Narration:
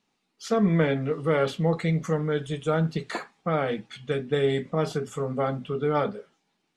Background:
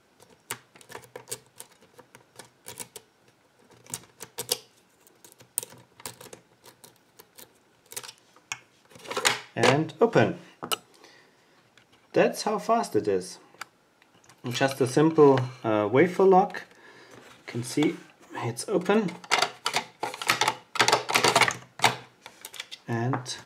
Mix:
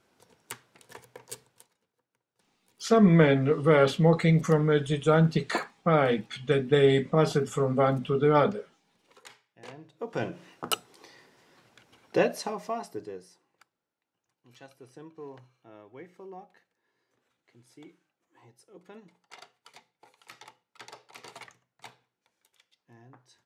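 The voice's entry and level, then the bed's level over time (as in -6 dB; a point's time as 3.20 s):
2.40 s, +3.0 dB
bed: 1.44 s -5.5 dB
1.97 s -27.5 dB
9.62 s -27.5 dB
10.56 s -0.5 dB
12.07 s -0.5 dB
13.98 s -26.5 dB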